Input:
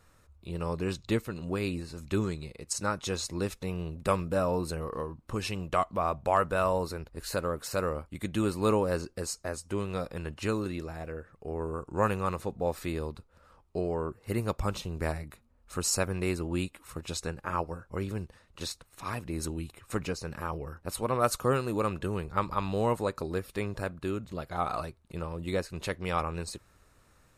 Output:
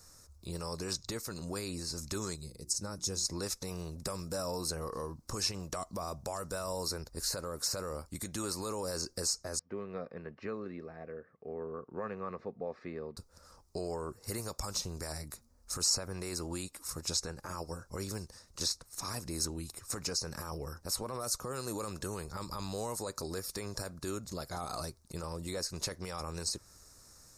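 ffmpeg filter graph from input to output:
ffmpeg -i in.wav -filter_complex "[0:a]asettb=1/sr,asplit=3[link_01][link_02][link_03];[link_01]atrim=end=2.364[link_04];[link_02]atrim=start=2.36:end=3.25,asetpts=PTS-STARTPTS,afade=type=in:duration=0.004:curve=qsin,afade=type=out:start_time=0.886:duration=0.004:curve=qsin,equalizer=frequency=1600:width=0.32:gain=-12,bandreject=frequency=60:width_type=h:width=6,bandreject=frequency=120:width_type=h:width=6,bandreject=frequency=180:width_type=h:width=6,bandreject=frequency=240:width_type=h:width=6,bandreject=frequency=300:width_type=h:width=6,bandreject=frequency=360:width_type=h:width=6[link_05];[link_03]atrim=start=3.246[link_06];[link_04][link_05]acrossfade=duration=0.004:curve1=hsin:curve2=qsin[link_07];[link_07][link_06]acrossfade=duration=0.004:curve1=qsin:curve2=hsin,asettb=1/sr,asplit=3[link_08][link_09][link_10];[link_08]atrim=end=9.594[link_11];[link_09]atrim=start=9.59:end=13.17,asetpts=PTS-STARTPTS,afade=type=in:duration=0.004:curve=qsin,afade=type=out:start_time=3.576:duration=0.004:curve=qsin,highpass=240,equalizer=frequency=320:width_type=q:width=4:gain=-9,equalizer=frequency=570:width_type=q:width=4:gain=-5,equalizer=frequency=830:width_type=q:width=4:gain=-9,equalizer=frequency=1400:width_type=q:width=4:gain=-9,lowpass=frequency=2100:width=0.5412,lowpass=frequency=2100:width=1.3066,bandreject=frequency=1000:width=8.1[link_12];[link_10]atrim=start=13.166[link_13];[link_11][link_12]acrossfade=duration=0.004:curve1=hsin:curve2=qsin[link_14];[link_14][link_13]acrossfade=duration=0.004:curve1=qsin:curve2=hsin,acrossover=split=530|3300[link_15][link_16][link_17];[link_15]acompressor=threshold=-38dB:ratio=4[link_18];[link_16]acompressor=threshold=-35dB:ratio=4[link_19];[link_17]acompressor=threshold=-49dB:ratio=4[link_20];[link_18][link_19][link_20]amix=inputs=3:normalize=0,alimiter=level_in=4dB:limit=-24dB:level=0:latency=1:release=13,volume=-4dB,highshelf=frequency=4000:width_type=q:width=3:gain=10.5" out.wav

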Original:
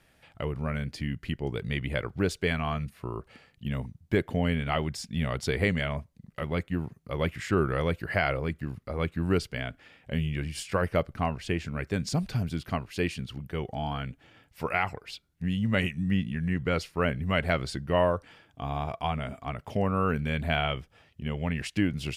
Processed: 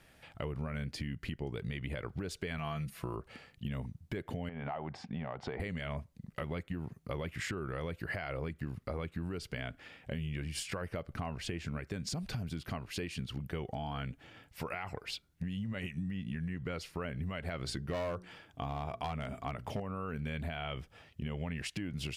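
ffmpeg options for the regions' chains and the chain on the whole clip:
ffmpeg -i in.wav -filter_complex "[0:a]asettb=1/sr,asplit=3[link_01][link_02][link_03];[link_01]atrim=end=2.584[link_04];[link_02]atrim=start=2.58:end=3.16,asetpts=PTS-STARTPTS,afade=type=in:duration=0.004:curve=qsin,afade=type=out:start_time=0.576:duration=0.004:curve=qsin,aecho=1:1:6:0.55,atrim=end_sample=25578,acompressor=threshold=-30dB:ratio=6:attack=3.2:release=140:knee=1:detection=peak,highshelf=frequency=4800:gain=7.5[link_05];[link_03]atrim=start=3.156[link_06];[link_04][link_05]acrossfade=duration=0.004:curve1=hsin:curve2=qsin[link_07];[link_07][link_06]acrossfade=duration=0.004:curve1=qsin:curve2=hsin,asettb=1/sr,asplit=3[link_08][link_09][link_10];[link_08]atrim=end=4.494[link_11];[link_09]atrim=start=4.49:end=5.6,asetpts=PTS-STARTPTS,afade=type=in:duration=0.004:curve=qsin,afade=type=out:start_time=1.106:duration=0.004:curve=qsin,highpass=110,lowpass=2100,equalizer=frequency=800:width_type=o:width=0.86:gain=14,acompressor=threshold=-35dB:ratio=3:attack=3.2:release=140:knee=1:detection=peak[link_12];[link_10]atrim=start=5.596[link_13];[link_11][link_12]acrossfade=duration=0.004:curve1=hsin:curve2=qsin[link_14];[link_14][link_13]acrossfade=duration=0.004:curve1=qsin:curve2=hsin,asettb=1/sr,asplit=3[link_15][link_16][link_17];[link_15]atrim=end=17.634[link_18];[link_16]atrim=start=17.63:end=19.8,asetpts=PTS-STARTPTS,afade=type=in:duration=0.004:curve=qsin,afade=type=out:start_time=2.166:duration=0.004:curve=qsin,bandreject=frequency=60:width_type=h:width=6,bandreject=frequency=120:width_type=h:width=6,bandreject=frequency=180:width_type=h:width=6,bandreject=frequency=240:width_type=h:width=6,bandreject=frequency=300:width_type=h:width=6,bandreject=frequency=360:width_type=h:width=6,bandreject=frequency=420:width_type=h:width=6,volume=23dB,asoftclip=hard,volume=-23dB[link_19];[link_17]atrim=start=19.796[link_20];[link_18][link_19]acrossfade=duration=0.004:curve1=hsin:curve2=qsin[link_21];[link_21][link_20]acrossfade=duration=0.004:curve1=qsin:curve2=hsin,alimiter=level_in=0.5dB:limit=-24dB:level=0:latency=1:release=151,volume=-0.5dB,acompressor=threshold=-36dB:ratio=6,volume=1.5dB" out.wav

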